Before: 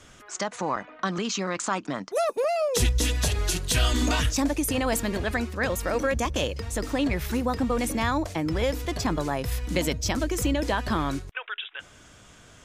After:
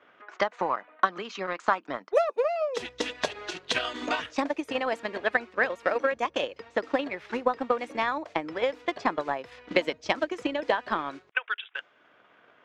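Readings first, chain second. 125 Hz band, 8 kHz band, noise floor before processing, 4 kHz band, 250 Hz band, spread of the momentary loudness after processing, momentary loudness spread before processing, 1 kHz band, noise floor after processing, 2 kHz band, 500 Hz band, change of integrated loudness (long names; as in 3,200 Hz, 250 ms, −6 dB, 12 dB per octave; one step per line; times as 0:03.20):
−22.0 dB, −17.0 dB, −52 dBFS, −4.5 dB, −8.0 dB, 6 LU, 7 LU, +1.5 dB, −62 dBFS, +1.5 dB, 0.0 dB, −2.5 dB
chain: band-pass filter 420–2,900 Hz
low-pass that shuts in the quiet parts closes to 2,300 Hz, open at −28.5 dBFS
transient designer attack +11 dB, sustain −4 dB
level −3 dB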